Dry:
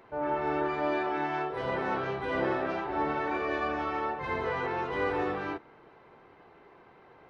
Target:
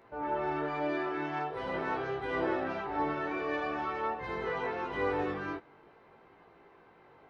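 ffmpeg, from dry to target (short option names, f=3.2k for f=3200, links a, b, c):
-af "flanger=delay=17.5:depth=3.5:speed=0.46"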